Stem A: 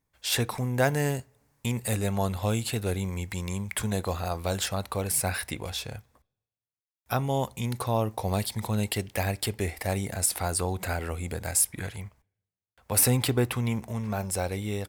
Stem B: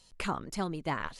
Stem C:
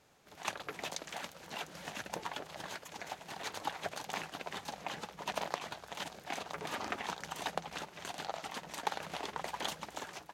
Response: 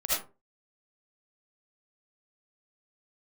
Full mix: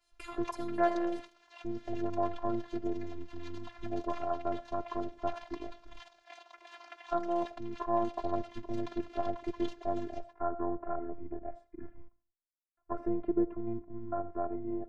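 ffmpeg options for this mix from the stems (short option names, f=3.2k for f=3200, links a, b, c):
-filter_complex "[0:a]afwtdn=0.0316,lowpass=f=1.5k:w=0.5412,lowpass=f=1.5k:w=1.3066,volume=0.5dB,asplit=2[a][b];[b]volume=-23.5dB[c];[1:a]agate=range=-33dB:threshold=-57dB:ratio=3:detection=peak,volume=-9.5dB,asplit=2[d][e];[e]volume=-17dB[f];[2:a]acrossover=split=520 6000:gain=0.126 1 0.0631[g][h][i];[g][h][i]amix=inputs=3:normalize=0,volume=-7dB[j];[3:a]atrim=start_sample=2205[k];[c][f]amix=inputs=2:normalize=0[l];[l][k]afir=irnorm=-1:irlink=0[m];[a][d][j][m]amix=inputs=4:normalize=0,afftfilt=real='hypot(re,im)*cos(PI*b)':imag='0':win_size=512:overlap=0.75"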